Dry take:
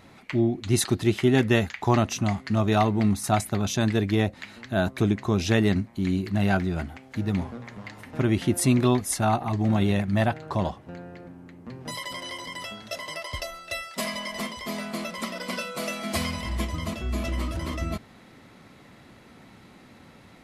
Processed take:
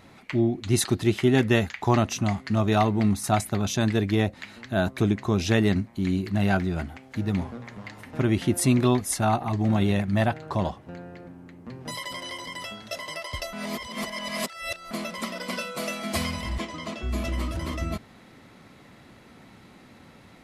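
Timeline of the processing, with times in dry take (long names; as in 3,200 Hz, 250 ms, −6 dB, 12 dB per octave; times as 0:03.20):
0:13.53–0:14.91: reverse
0:16.58–0:17.03: band-pass filter 230–6,700 Hz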